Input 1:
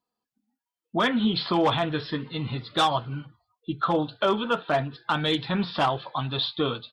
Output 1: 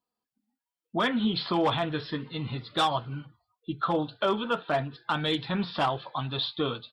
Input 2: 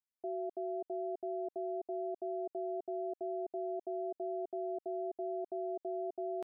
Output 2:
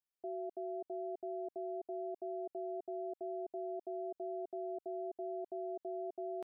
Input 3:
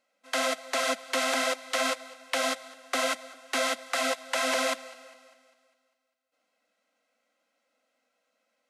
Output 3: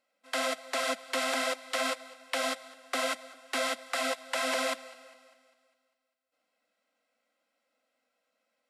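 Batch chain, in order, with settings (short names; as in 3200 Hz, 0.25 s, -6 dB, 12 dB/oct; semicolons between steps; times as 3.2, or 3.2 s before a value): notch 6300 Hz, Q 11; gain -3 dB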